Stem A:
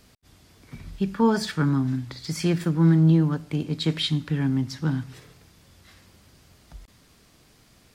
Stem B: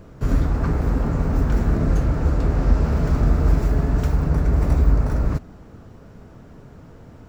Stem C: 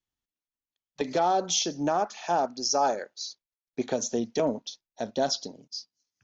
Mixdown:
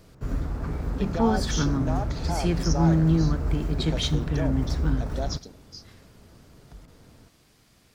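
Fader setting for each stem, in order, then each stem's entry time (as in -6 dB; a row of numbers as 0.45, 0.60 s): -3.0, -9.5, -7.0 dB; 0.00, 0.00, 0.00 s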